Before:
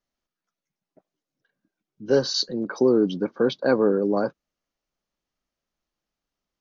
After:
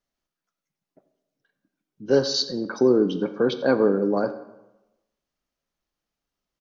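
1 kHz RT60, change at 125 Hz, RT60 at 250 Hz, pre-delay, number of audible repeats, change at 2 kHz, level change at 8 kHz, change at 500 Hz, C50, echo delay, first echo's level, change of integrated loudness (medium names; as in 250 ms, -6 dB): 1.0 s, +0.5 dB, 0.95 s, 7 ms, 1, +0.5 dB, no reading, +0.5 dB, 12.0 dB, 87 ms, -19.0 dB, +0.5 dB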